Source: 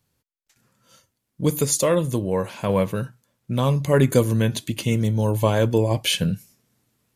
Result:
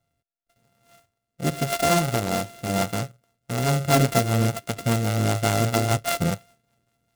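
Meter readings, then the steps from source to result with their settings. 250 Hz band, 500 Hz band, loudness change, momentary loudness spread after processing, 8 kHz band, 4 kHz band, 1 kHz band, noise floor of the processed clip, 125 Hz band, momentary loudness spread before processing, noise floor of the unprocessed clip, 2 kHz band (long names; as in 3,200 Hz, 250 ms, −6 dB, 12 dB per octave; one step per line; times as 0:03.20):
−2.5 dB, −4.0 dB, −2.0 dB, 9 LU, −1.0 dB, −2.0 dB, +4.5 dB, −82 dBFS, −2.0 dB, 8 LU, −78 dBFS, +2.5 dB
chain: samples sorted by size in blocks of 64 samples
rotating-speaker cabinet horn 0.85 Hz, later 5 Hz, at 0:02.60
short delay modulated by noise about 5,600 Hz, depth 0.047 ms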